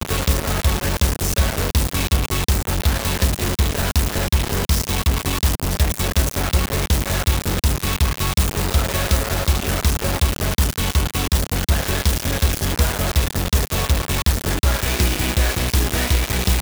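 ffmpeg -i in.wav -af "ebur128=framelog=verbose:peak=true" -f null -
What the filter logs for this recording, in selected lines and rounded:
Integrated loudness:
  I:         -20.0 LUFS
  Threshold: -30.0 LUFS
Loudness range:
  LRA:         0.5 LU
  Threshold: -40.1 LUFS
  LRA low:   -20.2 LUFS
  LRA high:  -19.7 LUFS
True peak:
  Peak:       -4.5 dBFS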